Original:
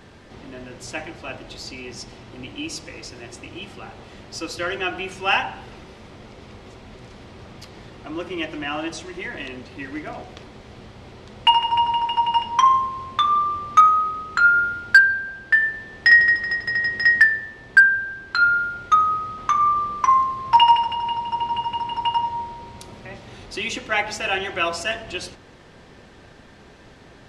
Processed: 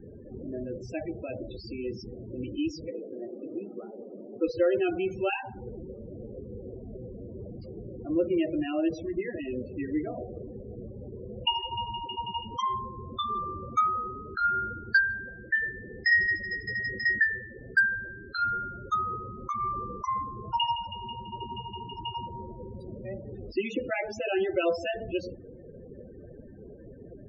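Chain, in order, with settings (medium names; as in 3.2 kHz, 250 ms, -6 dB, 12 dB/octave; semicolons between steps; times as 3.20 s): 2.90–4.44 s: Chebyshev band-pass 230–1400 Hz, order 2; loudest bins only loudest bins 16; resonant low shelf 690 Hz +9.5 dB, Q 3; trim -8.5 dB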